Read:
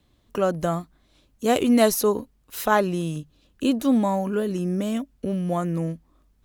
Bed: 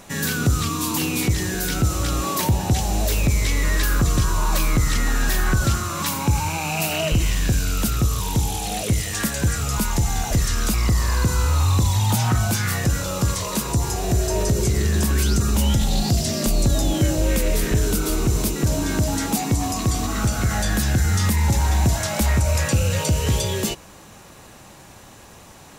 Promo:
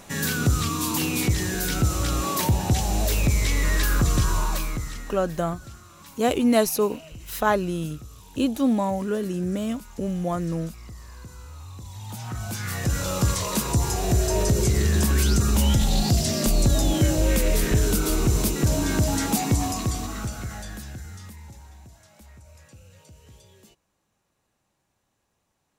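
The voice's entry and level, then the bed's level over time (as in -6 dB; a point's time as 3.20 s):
4.75 s, -1.5 dB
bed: 4.36 s -2 dB
5.33 s -22.5 dB
11.76 s -22.5 dB
13.07 s -1 dB
19.57 s -1 dB
21.89 s -30 dB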